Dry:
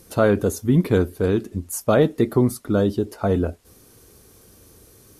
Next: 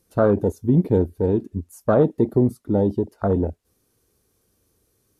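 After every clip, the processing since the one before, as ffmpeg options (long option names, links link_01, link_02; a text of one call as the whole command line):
ffmpeg -i in.wav -af "afwtdn=0.0794" out.wav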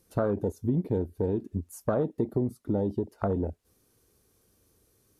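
ffmpeg -i in.wav -af "acompressor=threshold=-27dB:ratio=3" out.wav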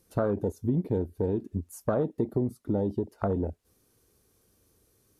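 ffmpeg -i in.wav -af anull out.wav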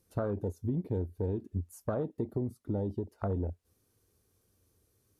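ffmpeg -i in.wav -af "equalizer=frequency=91:width_type=o:width=0.64:gain=7,volume=-6.5dB" out.wav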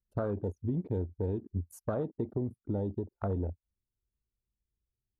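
ffmpeg -i in.wav -af "anlmdn=0.001" out.wav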